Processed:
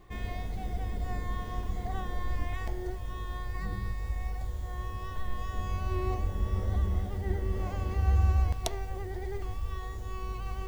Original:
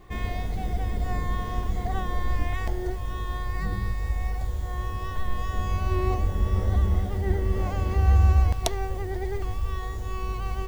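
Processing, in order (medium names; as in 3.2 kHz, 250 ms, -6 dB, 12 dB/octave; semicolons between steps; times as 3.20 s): de-hum 77.19 Hz, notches 35; reverse; upward compressor, threshold -30 dBFS; reverse; trim -6 dB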